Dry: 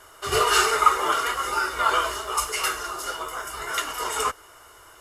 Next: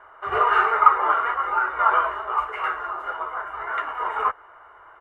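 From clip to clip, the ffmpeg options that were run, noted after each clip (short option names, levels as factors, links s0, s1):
-af "firequalizer=gain_entry='entry(240,0);entry(810,14);entry(1800,9);entry(5000,-29)':delay=0.05:min_phase=1,volume=0.376"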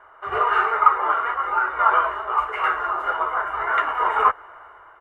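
-af "dynaudnorm=f=220:g=5:m=2.37,volume=0.891"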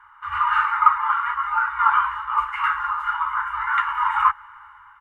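-af "afftfilt=real='re*(1-between(b*sr/4096,110,820))':imag='im*(1-between(b*sr/4096,110,820))':win_size=4096:overlap=0.75"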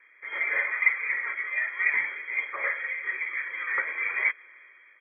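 -af "lowpass=f=2800:t=q:w=0.5098,lowpass=f=2800:t=q:w=0.6013,lowpass=f=2800:t=q:w=0.9,lowpass=f=2800:t=q:w=2.563,afreqshift=-3300,equalizer=f=100:t=o:w=0.67:g=8,equalizer=f=630:t=o:w=0.67:g=11,equalizer=f=2500:t=o:w=0.67:g=-5,volume=0.562"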